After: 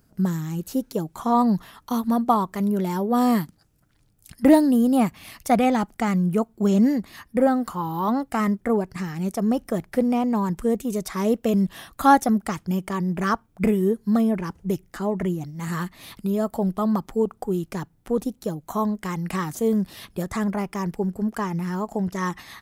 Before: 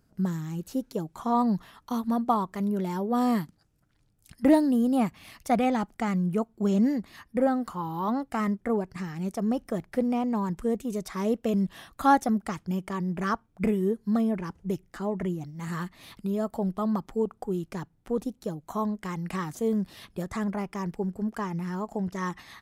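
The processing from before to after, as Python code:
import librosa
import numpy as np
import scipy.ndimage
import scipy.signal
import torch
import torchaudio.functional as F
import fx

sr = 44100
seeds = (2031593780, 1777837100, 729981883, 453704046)

y = fx.high_shelf(x, sr, hz=10000.0, db=8.0)
y = y * 10.0 ** (5.0 / 20.0)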